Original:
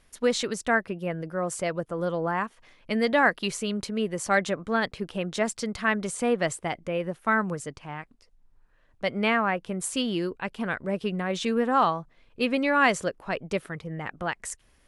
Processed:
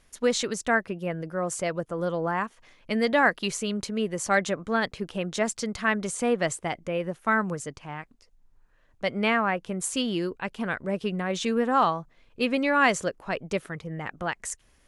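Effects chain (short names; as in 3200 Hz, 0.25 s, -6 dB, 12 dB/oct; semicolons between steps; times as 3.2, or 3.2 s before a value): bell 6600 Hz +4 dB 0.42 oct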